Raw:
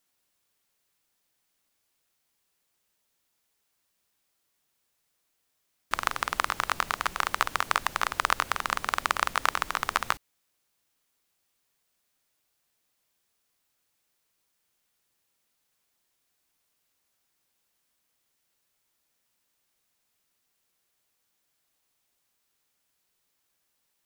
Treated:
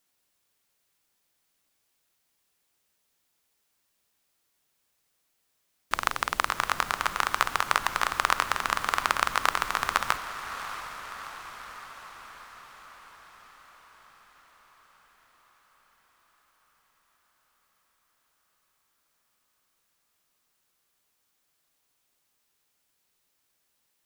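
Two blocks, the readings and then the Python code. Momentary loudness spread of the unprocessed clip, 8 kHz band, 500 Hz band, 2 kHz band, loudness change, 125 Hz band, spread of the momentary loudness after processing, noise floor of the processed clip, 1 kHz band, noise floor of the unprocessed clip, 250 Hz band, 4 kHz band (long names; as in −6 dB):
3 LU, +1.5 dB, +1.5 dB, +1.5 dB, +0.5 dB, +1.5 dB, 18 LU, −75 dBFS, +1.5 dB, −77 dBFS, +1.5 dB, +1.5 dB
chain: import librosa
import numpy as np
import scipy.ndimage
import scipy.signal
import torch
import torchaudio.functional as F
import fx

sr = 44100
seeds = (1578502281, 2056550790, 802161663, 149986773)

y = fx.echo_diffused(x, sr, ms=669, feedback_pct=64, wet_db=-11)
y = F.gain(torch.from_numpy(y), 1.0).numpy()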